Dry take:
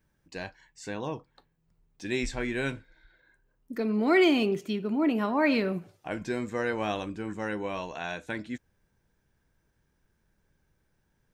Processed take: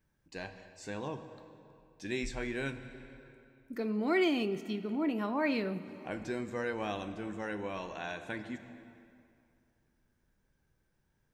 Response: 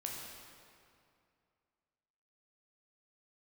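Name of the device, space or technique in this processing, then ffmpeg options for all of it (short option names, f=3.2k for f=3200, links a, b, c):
compressed reverb return: -filter_complex "[0:a]asplit=2[a][b];[1:a]atrim=start_sample=2205[c];[b][c]afir=irnorm=-1:irlink=0,acompressor=threshold=-33dB:ratio=4,volume=-2dB[d];[a][d]amix=inputs=2:normalize=0,volume=-8dB"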